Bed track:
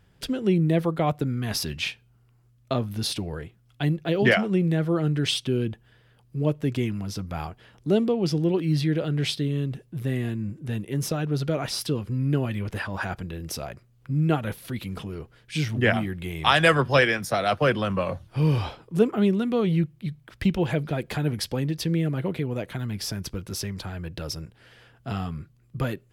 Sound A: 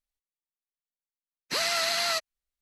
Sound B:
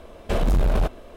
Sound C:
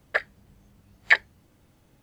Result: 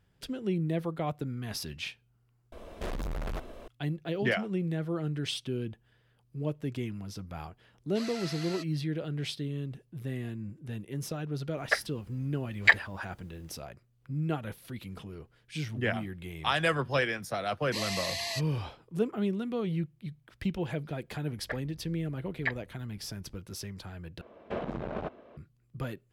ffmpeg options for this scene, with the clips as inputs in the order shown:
ffmpeg -i bed.wav -i cue0.wav -i cue1.wav -i cue2.wav -filter_complex "[2:a]asplit=2[link_01][link_02];[1:a]asplit=2[link_03][link_04];[3:a]asplit=2[link_05][link_06];[0:a]volume=-9dB[link_07];[link_01]asoftclip=type=tanh:threshold=-30dB[link_08];[link_03]highshelf=frequency=11000:gain=-9[link_09];[link_04]asuperstop=centerf=1400:order=20:qfactor=2.8[link_10];[link_06]aemphasis=mode=reproduction:type=riaa[link_11];[link_02]highpass=150,lowpass=2300[link_12];[link_07]asplit=3[link_13][link_14][link_15];[link_13]atrim=end=2.524[link_16];[link_08]atrim=end=1.16,asetpts=PTS-STARTPTS,volume=-2.5dB[link_17];[link_14]atrim=start=3.676:end=24.214[link_18];[link_12]atrim=end=1.16,asetpts=PTS-STARTPTS,volume=-8dB[link_19];[link_15]atrim=start=25.366[link_20];[link_09]atrim=end=2.61,asetpts=PTS-STARTPTS,volume=-14.5dB,afade=type=in:duration=0.004:curve=hsin,afade=type=out:start_time=2.606:duration=0.004:curve=hsin,adelay=6440[link_21];[link_05]atrim=end=2.02,asetpts=PTS-STARTPTS,volume=-2dB,afade=type=in:duration=0.004:curve=hsin,afade=type=out:start_time=2.016:duration=0.004:curve=hsin,adelay=11570[link_22];[link_10]atrim=end=2.61,asetpts=PTS-STARTPTS,volume=-7dB,afade=type=in:duration=0.004:curve=hsin,afade=type=out:start_time=2.606:duration=0.004:curve=hsin,adelay=16210[link_23];[link_11]atrim=end=2.02,asetpts=PTS-STARTPTS,volume=-11.5dB,afade=type=in:duration=0.004:curve=hsin,afade=type=out:start_time=2.016:duration=0.004:curve=hsin,adelay=21350[link_24];[link_16][link_17]acrossfade=duration=0.004:curve1=hsin:curve2=hsin[link_25];[link_25][link_18]acrossfade=duration=0.004:curve1=hsin:curve2=hsin[link_26];[link_26][link_19]acrossfade=duration=0.004:curve1=hsin:curve2=hsin[link_27];[link_27][link_20]acrossfade=duration=0.004:curve1=hsin:curve2=hsin[link_28];[link_28][link_21][link_22][link_23][link_24]amix=inputs=5:normalize=0" out.wav

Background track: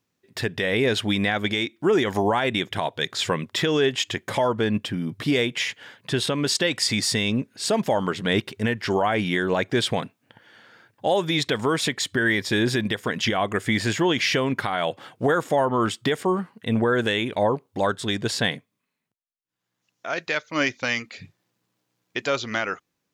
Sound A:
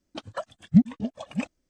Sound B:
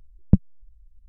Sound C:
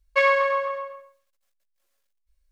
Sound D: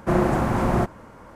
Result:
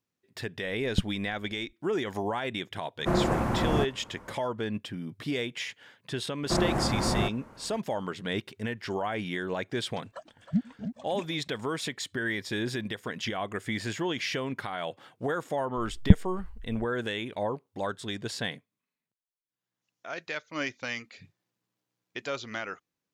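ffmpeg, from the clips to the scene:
ffmpeg -i bed.wav -i cue0.wav -i cue1.wav -i cue2.wav -i cue3.wav -filter_complex "[2:a]asplit=2[link_01][link_02];[4:a]asplit=2[link_03][link_04];[0:a]volume=-9.5dB[link_05];[1:a]aecho=1:1:314:0.335[link_06];[link_02]alimiter=level_in=9dB:limit=-1dB:release=50:level=0:latency=1[link_07];[link_01]atrim=end=1.08,asetpts=PTS-STARTPTS,volume=-11dB,afade=type=in:duration=0.004:curve=hsin,afade=type=out:start_time=1.076:duration=0.004:curve=hsin,adelay=650[link_08];[link_03]atrim=end=1.35,asetpts=PTS-STARTPTS,volume=-5.5dB,afade=type=in:duration=0.004:curve=hsin,afade=type=out:start_time=1.346:duration=0.004:curve=hsin,adelay=2990[link_09];[link_04]atrim=end=1.35,asetpts=PTS-STARTPTS,volume=-6.5dB,afade=type=in:duration=0.004:curve=hsin,afade=type=out:start_time=1.346:duration=0.004:curve=hsin,adelay=6430[link_10];[link_06]atrim=end=1.69,asetpts=PTS-STARTPTS,volume=-10.5dB,afade=type=in:duration=0.004:curve=hsin,afade=type=out:start_time=1.686:duration=0.004:curve=hsin,adelay=9790[link_11];[link_07]atrim=end=1.08,asetpts=PTS-STARTPTS,volume=-1.5dB,afade=type=in:duration=0.004:curve=hsin,afade=type=out:start_time=1.076:duration=0.004:curve=hsin,adelay=15770[link_12];[link_05][link_08][link_09][link_10][link_11][link_12]amix=inputs=6:normalize=0" out.wav

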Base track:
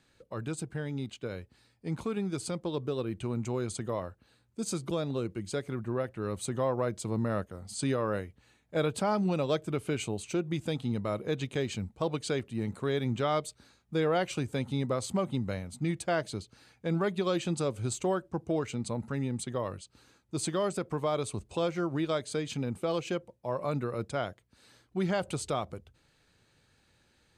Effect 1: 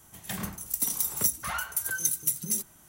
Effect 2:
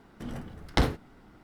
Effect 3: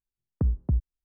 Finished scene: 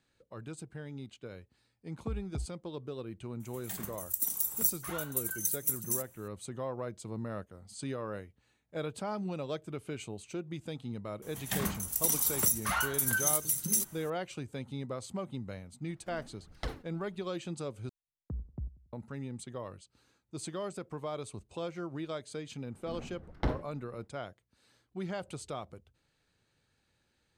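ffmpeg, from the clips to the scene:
ffmpeg -i bed.wav -i cue0.wav -i cue1.wav -i cue2.wav -filter_complex "[3:a]asplit=2[link_01][link_02];[1:a]asplit=2[link_03][link_04];[2:a]asplit=2[link_05][link_06];[0:a]volume=-8dB[link_07];[link_01]lowpass=frequency=800:width_type=q:width=5.9[link_08];[link_03]aexciter=amount=2.3:drive=3.9:freq=7100[link_09];[link_04]alimiter=level_in=15.5dB:limit=-1dB:release=50:level=0:latency=1[link_10];[link_05]aphaser=in_gain=1:out_gain=1:delay=4.6:decay=0.53:speed=1.5:type=triangular[link_11];[link_02]asplit=2[link_12][link_13];[link_13]adelay=93,lowpass=frequency=860:poles=1,volume=-18dB,asplit=2[link_14][link_15];[link_15]adelay=93,lowpass=frequency=860:poles=1,volume=0.44,asplit=2[link_16][link_17];[link_17]adelay=93,lowpass=frequency=860:poles=1,volume=0.44,asplit=2[link_18][link_19];[link_19]adelay=93,lowpass=frequency=860:poles=1,volume=0.44[link_20];[link_12][link_14][link_16][link_18][link_20]amix=inputs=5:normalize=0[link_21];[link_06]lowpass=frequency=1200:poles=1[link_22];[link_07]asplit=2[link_23][link_24];[link_23]atrim=end=17.894[link_25];[link_21]atrim=end=1.04,asetpts=PTS-STARTPTS,volume=-14.5dB[link_26];[link_24]atrim=start=18.926[link_27];[link_08]atrim=end=1.04,asetpts=PTS-STARTPTS,volume=-13.5dB,afade=type=in:duration=0.004:curve=hsin,afade=type=out:start_time=1.036:duration=0.004:curve=hsin,adelay=1660[link_28];[link_09]atrim=end=2.88,asetpts=PTS-STARTPTS,volume=-10dB,afade=type=in:duration=0.004:curve=hsin,afade=type=out:start_time=2.876:duration=0.004:curve=hsin,adelay=3400[link_29];[link_10]atrim=end=2.88,asetpts=PTS-STARTPTS,volume=-14dB,afade=type=in:duration=0.004:curve=hsin,afade=type=out:start_time=2.876:duration=0.004:curve=hsin,adelay=494802S[link_30];[link_11]atrim=end=1.43,asetpts=PTS-STARTPTS,volume=-15.5dB,afade=type=in:duration=0.004:curve=hsin,afade=type=out:start_time=1.426:duration=0.004:curve=hsin,adelay=15860[link_31];[link_22]atrim=end=1.43,asetpts=PTS-STARTPTS,volume=-6.5dB,afade=type=in:duration=0.1,afade=type=out:start_time=1.33:duration=0.1,adelay=22660[link_32];[link_25][link_26]acrossfade=duration=0.004:curve1=hsin:curve2=hsin[link_33];[link_33][link_27]acrossfade=duration=0.004:curve1=hsin:curve2=hsin[link_34];[link_34][link_28][link_29][link_30][link_31][link_32]amix=inputs=6:normalize=0" out.wav

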